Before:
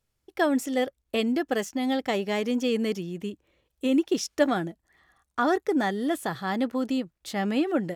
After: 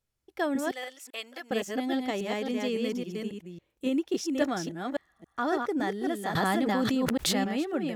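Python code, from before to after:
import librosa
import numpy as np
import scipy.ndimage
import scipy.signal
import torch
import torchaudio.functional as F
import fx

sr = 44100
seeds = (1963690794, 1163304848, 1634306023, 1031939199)

y = fx.reverse_delay(x, sr, ms=276, wet_db=-3.0)
y = fx.highpass(y, sr, hz=960.0, slope=12, at=(0.71, 1.51))
y = fx.env_flatten(y, sr, amount_pct=100, at=(6.35, 7.44))
y = y * 10.0 ** (-5.5 / 20.0)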